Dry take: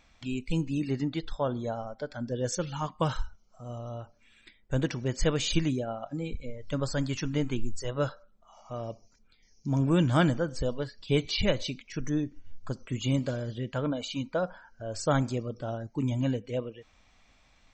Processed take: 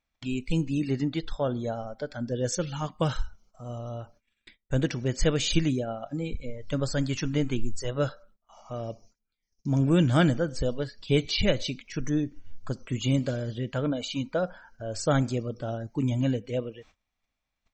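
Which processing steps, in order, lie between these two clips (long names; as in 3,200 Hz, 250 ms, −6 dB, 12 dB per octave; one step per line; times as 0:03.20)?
noise gate −56 dBFS, range −24 dB
dynamic equaliser 1,000 Hz, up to −7 dB, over −50 dBFS, Q 2.7
level +2.5 dB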